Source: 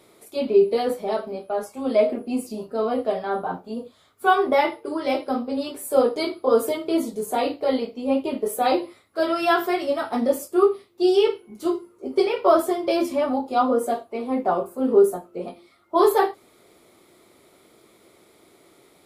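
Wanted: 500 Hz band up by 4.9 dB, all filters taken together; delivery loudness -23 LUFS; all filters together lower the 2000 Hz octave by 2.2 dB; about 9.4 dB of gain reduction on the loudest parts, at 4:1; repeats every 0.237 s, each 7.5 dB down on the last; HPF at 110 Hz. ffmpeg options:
-af "highpass=110,equalizer=f=500:t=o:g=6.5,equalizer=f=2k:t=o:g=-3.5,acompressor=threshold=-18dB:ratio=4,aecho=1:1:237|474|711|948|1185:0.422|0.177|0.0744|0.0312|0.0131"

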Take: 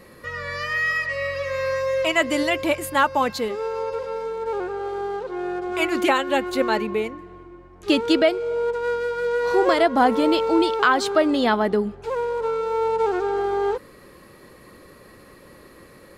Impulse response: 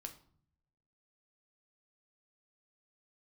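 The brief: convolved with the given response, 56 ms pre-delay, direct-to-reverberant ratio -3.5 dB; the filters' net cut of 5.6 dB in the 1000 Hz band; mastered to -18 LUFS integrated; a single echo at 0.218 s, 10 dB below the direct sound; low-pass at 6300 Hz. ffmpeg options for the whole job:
-filter_complex "[0:a]lowpass=6.3k,equalizer=f=1k:t=o:g=-7.5,aecho=1:1:218:0.316,asplit=2[a][b];[1:a]atrim=start_sample=2205,adelay=56[c];[b][c]afir=irnorm=-1:irlink=0,volume=8dB[d];[a][d]amix=inputs=2:normalize=0,volume=-0.5dB"

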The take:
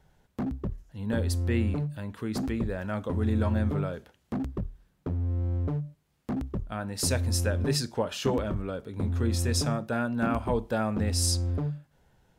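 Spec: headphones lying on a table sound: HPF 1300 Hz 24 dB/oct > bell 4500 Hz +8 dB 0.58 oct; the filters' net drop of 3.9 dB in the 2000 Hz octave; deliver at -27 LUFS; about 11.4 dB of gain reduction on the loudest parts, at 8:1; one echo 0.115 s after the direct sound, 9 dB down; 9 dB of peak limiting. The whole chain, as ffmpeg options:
-af "equalizer=f=2k:t=o:g=-5,acompressor=threshold=-34dB:ratio=8,alimiter=level_in=8.5dB:limit=-24dB:level=0:latency=1,volume=-8.5dB,highpass=f=1.3k:w=0.5412,highpass=f=1.3k:w=1.3066,equalizer=f=4.5k:t=o:w=0.58:g=8,aecho=1:1:115:0.355,volume=18.5dB"

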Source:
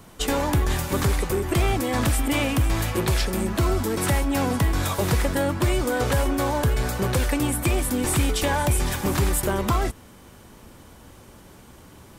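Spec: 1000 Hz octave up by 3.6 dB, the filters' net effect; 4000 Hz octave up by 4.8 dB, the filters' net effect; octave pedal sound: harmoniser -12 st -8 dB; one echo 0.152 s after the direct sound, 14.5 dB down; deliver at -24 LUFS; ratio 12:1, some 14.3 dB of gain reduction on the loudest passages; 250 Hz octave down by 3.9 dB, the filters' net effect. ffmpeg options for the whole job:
-filter_complex "[0:a]equalizer=f=250:t=o:g=-5.5,equalizer=f=1k:t=o:g=4.5,equalizer=f=4k:t=o:g=6,acompressor=threshold=-32dB:ratio=12,aecho=1:1:152:0.188,asplit=2[a][b];[b]asetrate=22050,aresample=44100,atempo=2,volume=-8dB[c];[a][c]amix=inputs=2:normalize=0,volume=11dB"

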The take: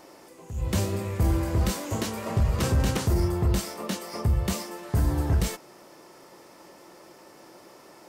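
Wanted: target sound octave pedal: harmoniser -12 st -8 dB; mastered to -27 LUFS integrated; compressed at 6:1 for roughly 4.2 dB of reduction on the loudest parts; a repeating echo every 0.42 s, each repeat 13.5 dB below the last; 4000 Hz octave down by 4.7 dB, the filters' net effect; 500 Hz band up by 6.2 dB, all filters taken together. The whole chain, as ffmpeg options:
-filter_complex "[0:a]equalizer=f=500:t=o:g=8,equalizer=f=4k:t=o:g=-6.5,acompressor=threshold=-22dB:ratio=6,aecho=1:1:420|840:0.211|0.0444,asplit=2[a][b];[b]asetrate=22050,aresample=44100,atempo=2,volume=-8dB[c];[a][c]amix=inputs=2:normalize=0,volume=1dB"

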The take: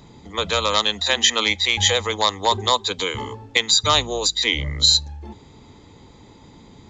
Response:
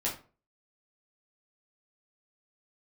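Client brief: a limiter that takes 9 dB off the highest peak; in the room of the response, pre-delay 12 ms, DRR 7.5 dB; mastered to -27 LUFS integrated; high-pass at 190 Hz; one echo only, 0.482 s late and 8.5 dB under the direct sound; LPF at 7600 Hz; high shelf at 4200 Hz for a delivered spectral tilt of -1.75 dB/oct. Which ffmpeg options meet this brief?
-filter_complex "[0:a]highpass=190,lowpass=7.6k,highshelf=f=4.2k:g=-7.5,alimiter=limit=-14dB:level=0:latency=1,aecho=1:1:482:0.376,asplit=2[a][b];[1:a]atrim=start_sample=2205,adelay=12[c];[b][c]afir=irnorm=-1:irlink=0,volume=-13dB[d];[a][d]amix=inputs=2:normalize=0,volume=-2.5dB"

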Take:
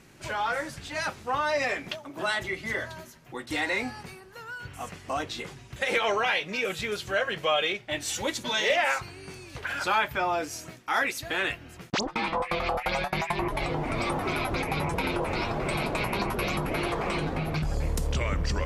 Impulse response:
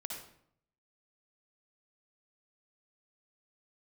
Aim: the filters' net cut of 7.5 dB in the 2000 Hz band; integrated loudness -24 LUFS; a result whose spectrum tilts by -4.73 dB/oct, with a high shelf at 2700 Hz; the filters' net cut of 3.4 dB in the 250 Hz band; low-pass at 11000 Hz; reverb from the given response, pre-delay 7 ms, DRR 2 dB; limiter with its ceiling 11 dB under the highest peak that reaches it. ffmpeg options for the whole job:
-filter_complex "[0:a]lowpass=11k,equalizer=f=250:t=o:g=-5,equalizer=f=2k:t=o:g=-7,highshelf=f=2.7k:g=-6,alimiter=level_in=3dB:limit=-24dB:level=0:latency=1,volume=-3dB,asplit=2[a][b];[1:a]atrim=start_sample=2205,adelay=7[c];[b][c]afir=irnorm=-1:irlink=0,volume=-1dB[d];[a][d]amix=inputs=2:normalize=0,volume=10.5dB"

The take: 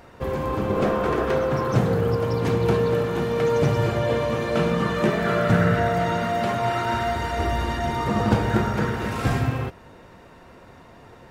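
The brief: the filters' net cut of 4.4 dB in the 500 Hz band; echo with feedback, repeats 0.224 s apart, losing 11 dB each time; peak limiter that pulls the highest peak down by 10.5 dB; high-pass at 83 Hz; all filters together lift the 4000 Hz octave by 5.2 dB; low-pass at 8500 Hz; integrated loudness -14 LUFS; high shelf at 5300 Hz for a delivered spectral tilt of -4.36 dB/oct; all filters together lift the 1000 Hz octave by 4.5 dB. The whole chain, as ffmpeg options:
-af "highpass=83,lowpass=8.5k,equalizer=f=500:t=o:g=-8,equalizer=f=1k:t=o:g=8,equalizer=f=4k:t=o:g=5,highshelf=f=5.3k:g=4,alimiter=limit=-16.5dB:level=0:latency=1,aecho=1:1:224|448|672:0.282|0.0789|0.0221,volume=11dB"

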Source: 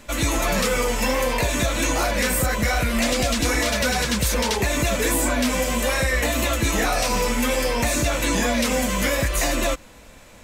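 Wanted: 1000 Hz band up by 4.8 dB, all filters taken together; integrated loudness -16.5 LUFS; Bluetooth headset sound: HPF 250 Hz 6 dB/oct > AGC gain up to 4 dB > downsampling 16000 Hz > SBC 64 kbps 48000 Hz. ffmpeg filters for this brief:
-af "highpass=f=250:p=1,equalizer=f=1k:t=o:g=6.5,dynaudnorm=m=4dB,aresample=16000,aresample=44100,volume=5dB" -ar 48000 -c:a sbc -b:a 64k

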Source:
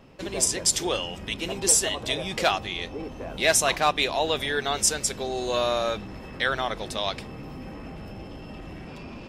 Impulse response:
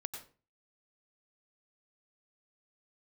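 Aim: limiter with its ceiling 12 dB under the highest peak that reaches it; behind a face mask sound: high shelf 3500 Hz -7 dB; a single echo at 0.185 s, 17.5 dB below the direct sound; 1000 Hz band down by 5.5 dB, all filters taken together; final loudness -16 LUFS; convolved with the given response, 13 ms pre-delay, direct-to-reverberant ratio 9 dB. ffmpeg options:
-filter_complex "[0:a]equalizer=f=1k:t=o:g=-7.5,alimiter=limit=-21dB:level=0:latency=1,aecho=1:1:185:0.133,asplit=2[a][b];[1:a]atrim=start_sample=2205,adelay=13[c];[b][c]afir=irnorm=-1:irlink=0,volume=-8dB[d];[a][d]amix=inputs=2:normalize=0,highshelf=f=3.5k:g=-7,volume=18dB"

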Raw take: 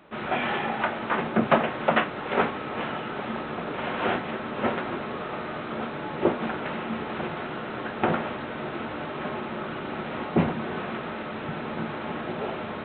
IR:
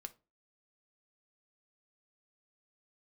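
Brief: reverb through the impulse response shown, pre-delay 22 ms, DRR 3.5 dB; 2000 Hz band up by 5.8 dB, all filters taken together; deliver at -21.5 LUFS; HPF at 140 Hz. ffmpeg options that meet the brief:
-filter_complex "[0:a]highpass=140,equalizer=f=2k:t=o:g=7.5,asplit=2[a][b];[1:a]atrim=start_sample=2205,adelay=22[c];[b][c]afir=irnorm=-1:irlink=0,volume=1.5dB[d];[a][d]amix=inputs=2:normalize=0,volume=3.5dB"

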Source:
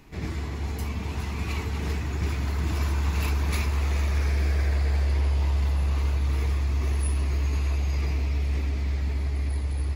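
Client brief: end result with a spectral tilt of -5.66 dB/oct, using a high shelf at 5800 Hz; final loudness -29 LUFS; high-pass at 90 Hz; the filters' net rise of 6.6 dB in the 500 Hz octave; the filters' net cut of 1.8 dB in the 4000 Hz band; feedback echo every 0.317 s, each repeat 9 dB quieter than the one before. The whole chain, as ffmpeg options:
-af "highpass=90,equalizer=f=500:t=o:g=8.5,equalizer=f=4k:t=o:g=-5.5,highshelf=f=5.8k:g=7.5,aecho=1:1:317|634|951|1268:0.355|0.124|0.0435|0.0152,volume=0.5dB"

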